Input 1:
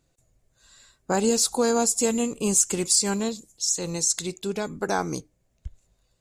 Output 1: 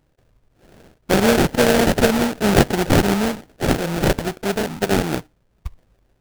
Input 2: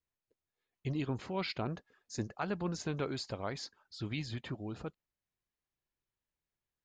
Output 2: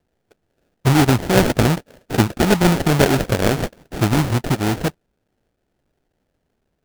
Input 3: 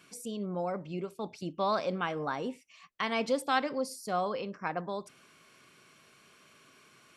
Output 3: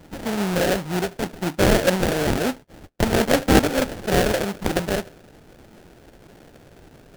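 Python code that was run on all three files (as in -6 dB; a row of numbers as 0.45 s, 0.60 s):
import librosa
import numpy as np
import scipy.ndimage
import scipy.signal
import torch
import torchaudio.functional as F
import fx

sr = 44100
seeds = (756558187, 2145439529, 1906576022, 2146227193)

y = fx.sample_hold(x, sr, seeds[0], rate_hz=1100.0, jitter_pct=20)
y = y * 10.0 ** (-2 / 20.0) / np.max(np.abs(y))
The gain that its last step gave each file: +7.0 dB, +21.5 dB, +12.5 dB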